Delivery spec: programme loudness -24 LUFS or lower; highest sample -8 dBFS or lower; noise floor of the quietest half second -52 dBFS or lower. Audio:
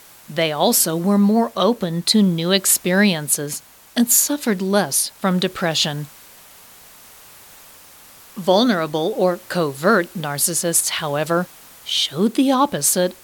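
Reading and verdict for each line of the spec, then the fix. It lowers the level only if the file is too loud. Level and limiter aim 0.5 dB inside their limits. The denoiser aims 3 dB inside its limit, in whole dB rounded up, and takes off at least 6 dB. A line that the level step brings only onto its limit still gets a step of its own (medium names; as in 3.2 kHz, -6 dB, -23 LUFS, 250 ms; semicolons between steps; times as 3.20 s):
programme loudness -18.0 LUFS: fail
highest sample -3.0 dBFS: fail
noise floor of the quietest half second -45 dBFS: fail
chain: noise reduction 6 dB, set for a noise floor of -45 dBFS; trim -6.5 dB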